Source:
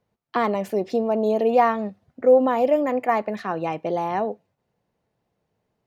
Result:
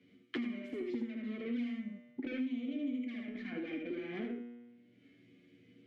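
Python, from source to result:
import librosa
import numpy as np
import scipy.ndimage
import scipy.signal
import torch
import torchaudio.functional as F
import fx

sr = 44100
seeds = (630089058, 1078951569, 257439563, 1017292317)

p1 = fx.dynamic_eq(x, sr, hz=240.0, q=1.4, threshold_db=-33.0, ratio=4.0, max_db=5)
p2 = 10.0 ** (-23.0 / 20.0) * np.tanh(p1 / 10.0 ** (-23.0 / 20.0))
p3 = fx.vowel_filter(p2, sr, vowel='i')
p4 = fx.env_flanger(p3, sr, rest_ms=10.8, full_db=-31.5)
p5 = fx.comb_fb(p4, sr, f0_hz=120.0, decay_s=0.76, harmonics='all', damping=0.0, mix_pct=80)
p6 = p5 + fx.echo_single(p5, sr, ms=75, db=-3.0, dry=0)
p7 = fx.band_squash(p6, sr, depth_pct=100)
y = p7 * librosa.db_to_amplitude(9.0)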